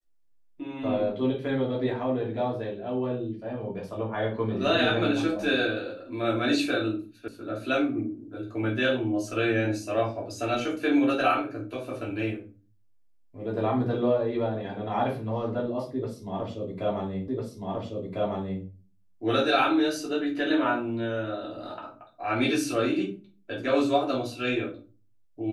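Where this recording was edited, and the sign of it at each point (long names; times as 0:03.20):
0:07.28: cut off before it has died away
0:17.28: the same again, the last 1.35 s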